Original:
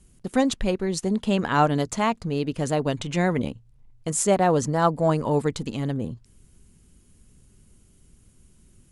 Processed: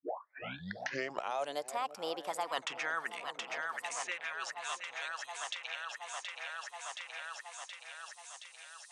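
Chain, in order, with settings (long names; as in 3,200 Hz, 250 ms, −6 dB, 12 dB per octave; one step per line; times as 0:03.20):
turntable start at the beginning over 1.98 s
source passing by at 0:02.58, 42 m/s, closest 2.7 metres
high-pass filter sweep 630 Hz → 3,200 Hz, 0:01.59–0:04.80
reversed playback
downward compressor 12 to 1, threshold −43 dBFS, peak gain reduction 18.5 dB
reversed playback
noise reduction from a noise print of the clip's start 25 dB
echo with a time of its own for lows and highs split 670 Hz, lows 332 ms, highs 723 ms, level −12.5 dB
multiband upward and downward compressor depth 100%
level +15 dB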